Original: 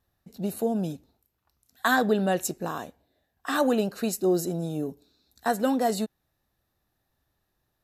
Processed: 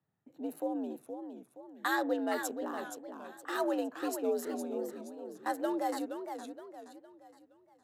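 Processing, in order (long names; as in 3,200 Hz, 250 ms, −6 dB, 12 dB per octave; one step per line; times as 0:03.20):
adaptive Wiener filter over 9 samples
frequency shifter +76 Hz
feedback echo with a swinging delay time 467 ms, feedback 40%, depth 201 cents, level −8 dB
level −8.5 dB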